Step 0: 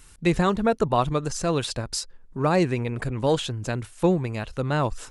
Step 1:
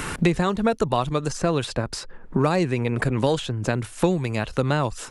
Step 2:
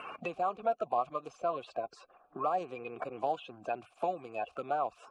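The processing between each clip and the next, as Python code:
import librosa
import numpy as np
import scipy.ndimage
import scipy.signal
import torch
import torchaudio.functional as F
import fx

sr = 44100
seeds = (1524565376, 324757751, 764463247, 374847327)

y1 = fx.band_squash(x, sr, depth_pct=100)
y2 = fx.spec_quant(y1, sr, step_db=30)
y2 = fx.vowel_filter(y2, sr, vowel='a')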